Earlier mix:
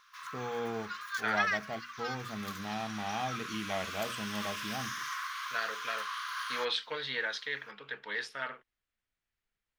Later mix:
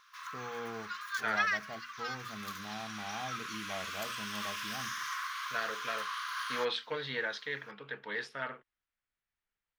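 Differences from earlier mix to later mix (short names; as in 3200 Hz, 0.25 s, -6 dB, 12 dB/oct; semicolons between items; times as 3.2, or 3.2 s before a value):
first voice -6.0 dB; second voice: add tilt -2 dB/oct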